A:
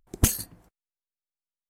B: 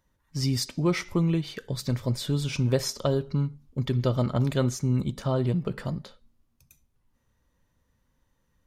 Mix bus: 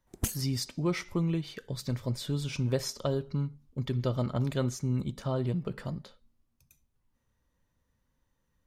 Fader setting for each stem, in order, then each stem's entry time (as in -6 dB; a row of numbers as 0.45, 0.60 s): -10.0, -5.0 dB; 0.00, 0.00 s